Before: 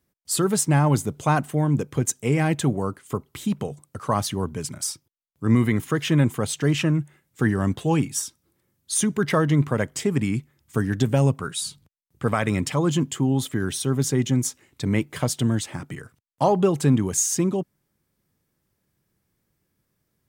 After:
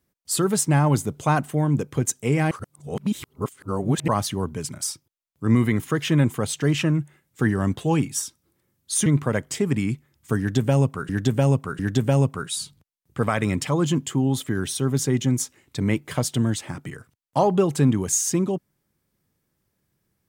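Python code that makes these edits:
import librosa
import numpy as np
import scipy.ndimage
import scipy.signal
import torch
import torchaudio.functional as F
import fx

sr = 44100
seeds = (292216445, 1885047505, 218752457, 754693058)

y = fx.edit(x, sr, fx.reverse_span(start_s=2.51, length_s=1.57),
    fx.cut(start_s=9.06, length_s=0.45),
    fx.repeat(start_s=10.84, length_s=0.7, count=3), tone=tone)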